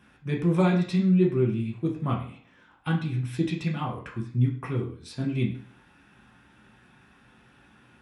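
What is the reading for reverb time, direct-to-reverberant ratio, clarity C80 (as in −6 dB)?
0.50 s, −3.0 dB, 12.0 dB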